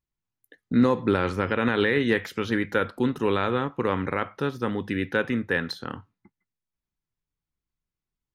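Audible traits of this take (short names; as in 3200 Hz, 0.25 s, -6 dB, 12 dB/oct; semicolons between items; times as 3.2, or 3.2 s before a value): noise floor -89 dBFS; spectral tilt -4.5 dB/oct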